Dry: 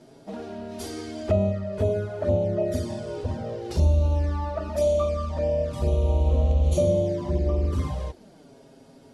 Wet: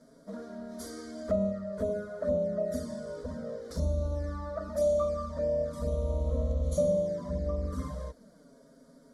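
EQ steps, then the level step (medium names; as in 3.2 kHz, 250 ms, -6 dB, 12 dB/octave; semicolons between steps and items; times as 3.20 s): static phaser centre 540 Hz, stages 8; -3.5 dB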